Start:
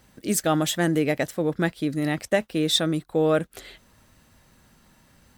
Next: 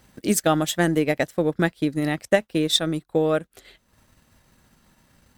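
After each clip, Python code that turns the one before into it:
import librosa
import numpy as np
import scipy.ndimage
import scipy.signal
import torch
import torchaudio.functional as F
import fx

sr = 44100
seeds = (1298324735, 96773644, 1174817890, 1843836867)

y = fx.transient(x, sr, attack_db=4, sustain_db=-8)
y = fx.rider(y, sr, range_db=10, speed_s=2.0)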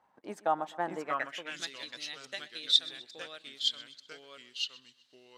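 y = fx.echo_pitch(x, sr, ms=581, semitones=-2, count=2, db_per_echo=-3.0)
y = fx.echo_feedback(y, sr, ms=127, feedback_pct=49, wet_db=-20)
y = fx.filter_sweep_bandpass(y, sr, from_hz=900.0, to_hz=4000.0, start_s=0.98, end_s=1.69, q=4.0)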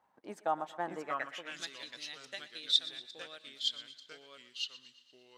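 y = fx.echo_thinned(x, sr, ms=116, feedback_pct=63, hz=420.0, wet_db=-17.5)
y = y * 10.0 ** (-3.5 / 20.0)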